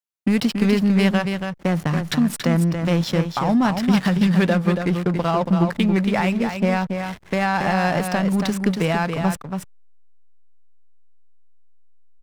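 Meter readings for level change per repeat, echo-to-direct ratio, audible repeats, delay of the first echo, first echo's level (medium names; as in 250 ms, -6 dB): no regular repeats, -6.5 dB, 1, 280 ms, -6.5 dB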